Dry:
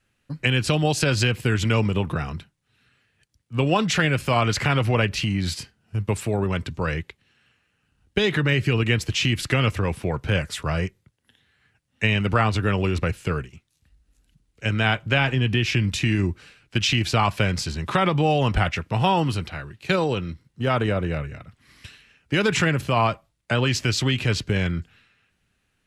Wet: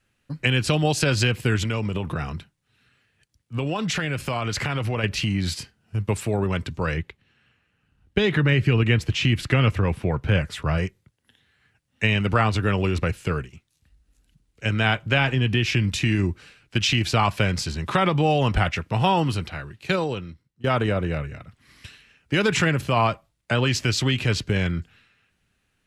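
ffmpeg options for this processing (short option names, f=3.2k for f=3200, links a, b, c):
-filter_complex "[0:a]asettb=1/sr,asplit=3[a][b][c];[a]atrim=end=1.624[d];[b]atrim=start=1.62:end=5.04,asetpts=PTS-STARTPTS,afade=t=in:d=0.004:c=qsin,afade=t=out:st=3.416:d=0.004:c=qsin,acompressor=threshold=-22dB:ratio=4:attack=3.2:release=140:knee=1:detection=peak[e];[c]atrim=start=5.036[f];[d][e]acrossfade=d=0.004:c1=hsin:c2=qsin[g];[g][f]acrossfade=d=0.004:c1=qsin:c2=hsin,asettb=1/sr,asplit=3[h][i][j];[h]atrim=end=6.974[k];[i]atrim=start=6.97:end=10.78,asetpts=PTS-STARTPTS,afade=t=in:d=0.004:c=qsin,afade=t=out:st=3.806:d=0.004:c=qsin,bass=f=250:g=3,treble=f=4k:g=-7[l];[j]atrim=start=10.776[m];[k][l]acrossfade=d=0.004:c1=hsin:c2=qsin[n];[n][m]acrossfade=d=0.004:c1=qsin:c2=hsin,asplit=2[o][p];[o]atrim=end=20.64,asetpts=PTS-STARTPTS,afade=t=out:st=19.79:d=0.85:silence=0.0749894[q];[p]atrim=start=20.64,asetpts=PTS-STARTPTS,afade=t=in:d=0.004:c=hsin:silence=0.0749894[r];[q][r]concat=n=2:v=0:a=1"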